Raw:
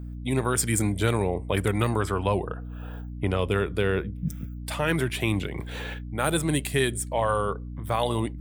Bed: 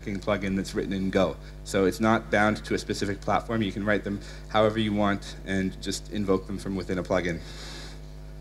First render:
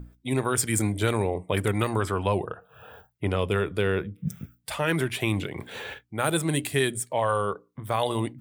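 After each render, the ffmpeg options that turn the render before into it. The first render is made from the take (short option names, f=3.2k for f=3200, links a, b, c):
-af "bandreject=f=60:t=h:w=6,bandreject=f=120:t=h:w=6,bandreject=f=180:t=h:w=6,bandreject=f=240:t=h:w=6,bandreject=f=300:t=h:w=6"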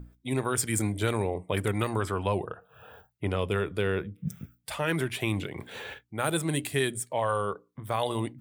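-af "volume=-3dB"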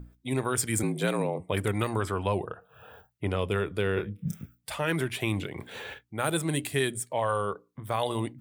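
-filter_complex "[0:a]asettb=1/sr,asplit=3[a][b][c];[a]atrim=end=0.834[d];[b]atrim=start=0.83:end=1.4,asetpts=PTS-STARTPTS,afade=t=in:d=0.004:c=qsin,afade=t=out:st=0.566:d=0.004:c=qsin,afreqshift=65[e];[c]atrim=start=1.396[f];[d][e]acrossfade=d=0.004:c1=hsin:c2=qsin[g];[g][f]acrossfade=d=0.004:c1=qsin:c2=hsin,asettb=1/sr,asplit=3[h][i][j];[h]atrim=end=3.944[k];[i]atrim=start=3.94:end=4.43,asetpts=PTS-STARTPTS,afade=t=in:d=0.004:c=qsin,afade=t=out:st=0.486:d=0.004:c=qsin,asplit=2[l][m];[m]adelay=29,volume=-4dB[n];[l][n]amix=inputs=2:normalize=0,atrim=end_sample=21609[o];[j]atrim=start=4.426[p];[k][o]acrossfade=d=0.004:c1=hsin:c2=qsin[q];[q][p]acrossfade=d=0.004:c1=qsin:c2=hsin"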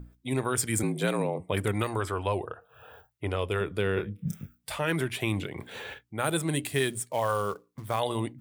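-filter_complex "[0:a]asettb=1/sr,asplit=3[a][b][c];[a]atrim=end=1.824[d];[b]atrim=start=1.82:end=3.61,asetpts=PTS-STARTPTS,afade=t=in:d=0.004:c=qsin,afade=t=out:st=1.786:d=0.004:c=qsin,equalizer=f=180:t=o:w=0.77:g=-9[e];[c]atrim=start=3.606[f];[d][e]acrossfade=d=0.004:c1=hsin:c2=qsin[g];[g][f]acrossfade=d=0.004:c1=qsin:c2=hsin,asettb=1/sr,asplit=3[h][i][j];[h]atrim=end=4.374[k];[i]atrim=start=4.37:end=4.79,asetpts=PTS-STARTPTS,afade=t=in:d=0.004:c=qsin,afade=t=out:st=0.416:d=0.004:c=qsin,asplit=2[l][m];[m]adelay=21,volume=-8.5dB[n];[l][n]amix=inputs=2:normalize=0,atrim=end_sample=18522[o];[j]atrim=start=4.786[p];[k][o]acrossfade=d=0.004:c1=hsin:c2=qsin[q];[q][p]acrossfade=d=0.004:c1=qsin:c2=hsin,asettb=1/sr,asplit=3[r][s][t];[r]atrim=end=6.654[u];[s]atrim=start=6.65:end=8,asetpts=PTS-STARTPTS,afade=t=in:d=0.004:c=qsin,afade=t=out:st=1.346:d=0.004:c=qsin,acrusher=bits=5:mode=log:mix=0:aa=0.000001[v];[t]atrim=start=7.996[w];[u][v]acrossfade=d=0.004:c1=hsin:c2=qsin[x];[x][w]acrossfade=d=0.004:c1=qsin:c2=hsin"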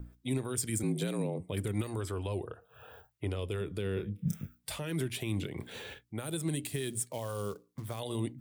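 -filter_complex "[0:a]alimiter=limit=-20.5dB:level=0:latency=1:release=134,acrossover=split=450|3000[a][b][c];[b]acompressor=threshold=-55dB:ratio=2[d];[a][d][c]amix=inputs=3:normalize=0"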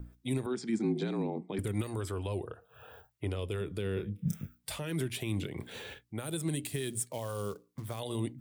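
-filter_complex "[0:a]asettb=1/sr,asplit=3[a][b][c];[a]atrim=end=0.464[d];[b]atrim=start=0.46:end=1.59,asetpts=PTS-STARTPTS,afade=t=in:d=0.004:c=qsin,afade=t=out:st=1.126:d=0.004:c=qsin,highpass=f=180:w=0.5412,highpass=f=180:w=1.3066,equalizer=f=220:t=q:w=4:g=9,equalizer=f=360:t=q:w=4:g=6,equalizer=f=540:t=q:w=4:g=-8,equalizer=f=810:t=q:w=4:g=7,equalizer=f=2.9k:t=q:w=4:g=-9,lowpass=f=5.2k:w=0.5412,lowpass=f=5.2k:w=1.3066[e];[c]atrim=start=1.586[f];[d][e]acrossfade=d=0.004:c1=hsin:c2=qsin[g];[g][f]acrossfade=d=0.004:c1=qsin:c2=hsin"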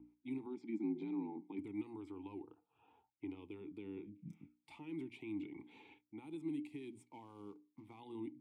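-filter_complex "[0:a]asplit=3[a][b][c];[a]bandpass=f=300:t=q:w=8,volume=0dB[d];[b]bandpass=f=870:t=q:w=8,volume=-6dB[e];[c]bandpass=f=2.24k:t=q:w=8,volume=-9dB[f];[d][e][f]amix=inputs=3:normalize=0"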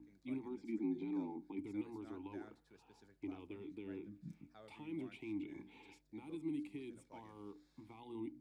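-filter_complex "[1:a]volume=-37.5dB[a];[0:a][a]amix=inputs=2:normalize=0"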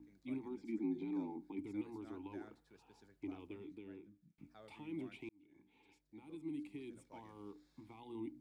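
-filter_complex "[0:a]asplit=3[a][b][c];[a]atrim=end=4.38,asetpts=PTS-STARTPTS,afade=t=out:st=3.52:d=0.86[d];[b]atrim=start=4.38:end=5.29,asetpts=PTS-STARTPTS,afade=t=in:d=0.004:c=hsin,afade=t=out:st=0.906:d=0.004:c=hsin[e];[c]atrim=start=5.29,asetpts=PTS-STARTPTS,afade=t=in:d=1.68[f];[d][e][f]concat=n=3:v=0:a=1"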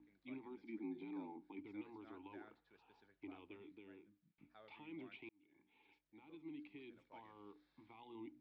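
-af "lowpass=f=3.7k:w=0.5412,lowpass=f=3.7k:w=1.3066,lowshelf=f=430:g=-11.5"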